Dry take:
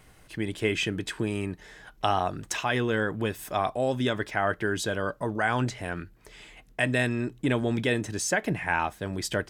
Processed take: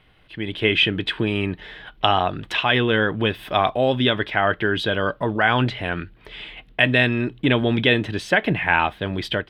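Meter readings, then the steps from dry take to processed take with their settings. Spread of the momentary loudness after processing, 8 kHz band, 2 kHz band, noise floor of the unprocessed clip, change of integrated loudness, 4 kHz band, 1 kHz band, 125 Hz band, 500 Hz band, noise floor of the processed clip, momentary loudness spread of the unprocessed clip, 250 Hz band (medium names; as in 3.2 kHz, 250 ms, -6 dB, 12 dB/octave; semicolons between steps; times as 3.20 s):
13 LU, under -10 dB, +9.0 dB, -56 dBFS, +8.0 dB, +12.5 dB, +7.0 dB, +6.5 dB, +6.5 dB, -53 dBFS, 9 LU, +6.5 dB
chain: level rider gain up to 11 dB; resonant high shelf 4.8 kHz -13.5 dB, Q 3; trim -2.5 dB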